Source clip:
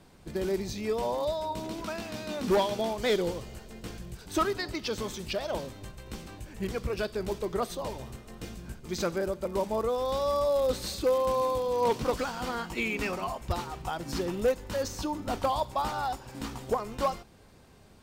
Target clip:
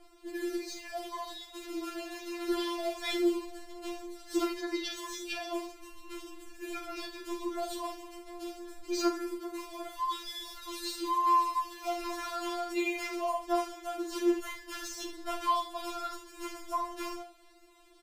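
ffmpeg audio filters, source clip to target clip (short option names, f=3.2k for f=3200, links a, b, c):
-af "aecho=1:1:43|76:0.447|0.316,afftfilt=real='re*4*eq(mod(b,16),0)':imag='im*4*eq(mod(b,16),0)':win_size=2048:overlap=0.75"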